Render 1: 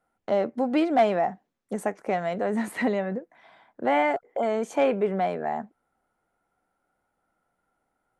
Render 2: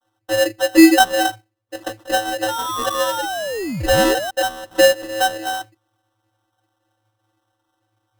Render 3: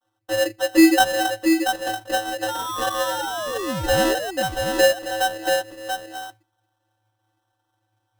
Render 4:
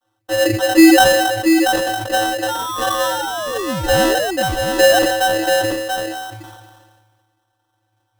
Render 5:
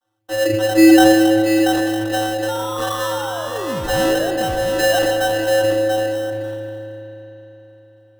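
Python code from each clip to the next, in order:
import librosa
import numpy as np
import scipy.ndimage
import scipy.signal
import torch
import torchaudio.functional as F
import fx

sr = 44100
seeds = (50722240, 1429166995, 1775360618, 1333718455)

y1 = fx.vocoder(x, sr, bands=32, carrier='square', carrier_hz=108.0)
y1 = fx.spec_paint(y1, sr, seeds[0], shape='rise', start_s=2.48, length_s=1.83, low_hz=870.0, high_hz=3100.0, level_db=-33.0)
y1 = fx.sample_hold(y1, sr, seeds[1], rate_hz=2300.0, jitter_pct=0)
y1 = y1 * librosa.db_to_amplitude(8.5)
y2 = y1 + 10.0 ** (-5.5 / 20.0) * np.pad(y1, (int(684 * sr / 1000.0), 0))[:len(y1)]
y2 = y2 * librosa.db_to_amplitude(-4.0)
y3 = fx.sustainer(y2, sr, db_per_s=35.0)
y3 = y3 * librosa.db_to_amplitude(4.0)
y4 = fx.rev_spring(y3, sr, rt60_s=3.9, pass_ms=(37,), chirp_ms=70, drr_db=4.5)
y4 = y4 * librosa.db_to_amplitude(-4.5)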